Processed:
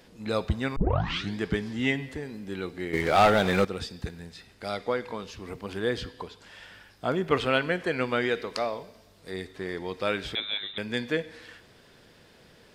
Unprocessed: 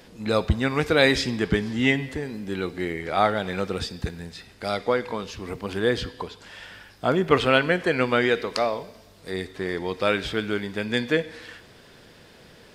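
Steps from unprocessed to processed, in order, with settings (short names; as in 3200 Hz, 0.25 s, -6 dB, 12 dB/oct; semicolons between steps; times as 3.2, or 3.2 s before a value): 0.76 tape start 0.63 s; 2.93–3.65 sample leveller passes 3; 10.35–10.78 inverted band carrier 3800 Hz; gain -5.5 dB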